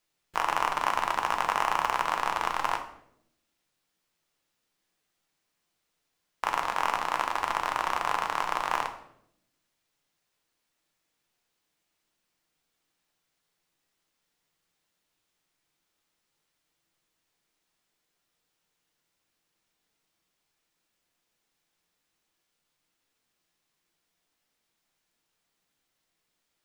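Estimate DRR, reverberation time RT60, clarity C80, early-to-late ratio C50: 4.0 dB, 0.75 s, 13.0 dB, 10.0 dB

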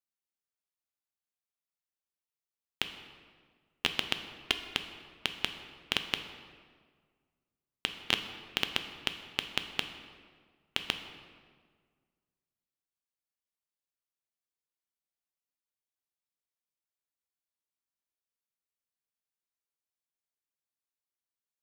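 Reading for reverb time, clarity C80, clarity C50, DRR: 1.7 s, 10.5 dB, 9.0 dB, 7.0 dB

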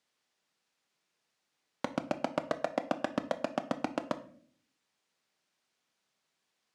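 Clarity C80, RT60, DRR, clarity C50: 18.5 dB, 0.50 s, 9.0 dB, 15.0 dB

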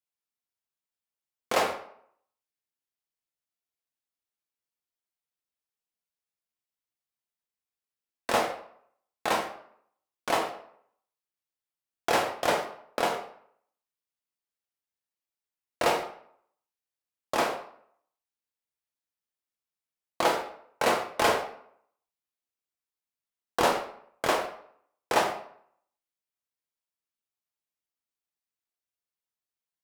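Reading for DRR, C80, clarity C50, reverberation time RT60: 1.5 dB, 11.0 dB, 8.0 dB, 0.65 s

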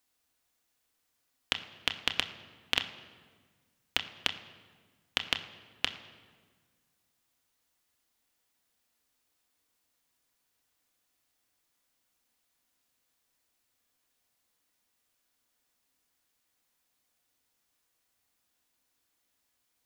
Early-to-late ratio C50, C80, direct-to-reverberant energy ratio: 12.0 dB, 13.5 dB, 6.0 dB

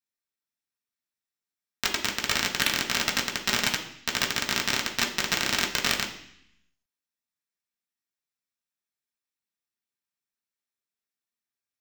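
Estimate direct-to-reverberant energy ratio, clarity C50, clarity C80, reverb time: -1.0 dB, 9.5 dB, 12.5 dB, 0.65 s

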